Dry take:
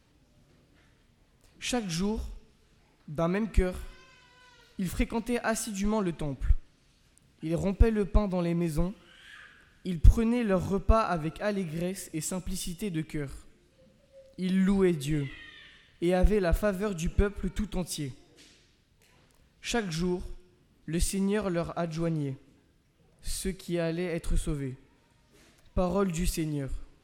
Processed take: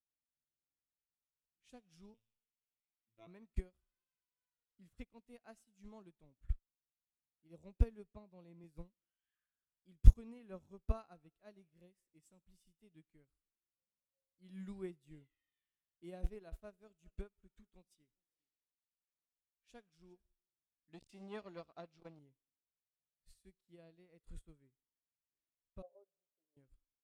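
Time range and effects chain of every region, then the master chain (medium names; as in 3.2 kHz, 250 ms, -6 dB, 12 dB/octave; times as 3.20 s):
2.14–3.27 s: high-order bell 2.6 kHz +14 dB 1 oct + robot voice 112 Hz
8.13–8.64 s: high-pass 99 Hz + treble shelf 5.2 kHz -5.5 dB
16.23–20.25 s: peaking EQ 110 Hz -8.5 dB 0.98 oct + delay 403 ms -23 dB
20.93–22.19 s: FFT filter 150 Hz 0 dB, 240 Hz +5 dB, 4.3 kHz +11 dB, 11 kHz -3 dB + transformer saturation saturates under 600 Hz
25.82–26.57 s: Butterworth band-pass 570 Hz, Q 2.3 + comb 7.2 ms, depth 77%
whole clip: dynamic bell 1.5 kHz, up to -4 dB, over -47 dBFS, Q 1.7; upward expansion 2.5:1, over -39 dBFS; trim -2.5 dB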